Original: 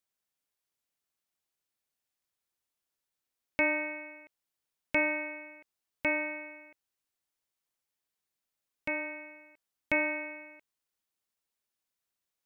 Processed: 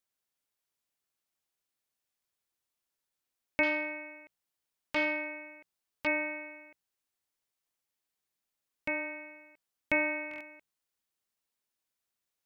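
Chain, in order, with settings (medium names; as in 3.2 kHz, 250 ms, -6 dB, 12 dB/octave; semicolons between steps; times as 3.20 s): de-hum 58.97 Hz, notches 3; buffer glitch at 10.29 s, samples 1024, times 4; 3.63–6.07 s: transformer saturation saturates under 1.4 kHz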